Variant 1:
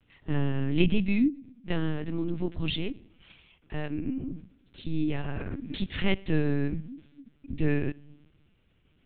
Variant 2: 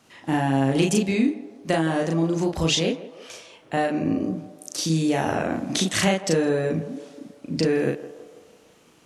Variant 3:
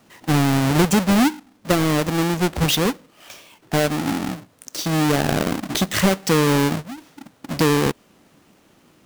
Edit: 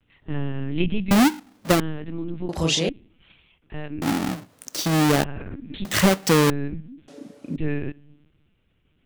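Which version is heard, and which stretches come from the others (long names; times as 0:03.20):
1
0:01.11–0:01.80: punch in from 3
0:02.49–0:02.89: punch in from 2
0:04.02–0:05.24: punch in from 3
0:05.85–0:06.50: punch in from 3
0:07.08–0:07.56: punch in from 2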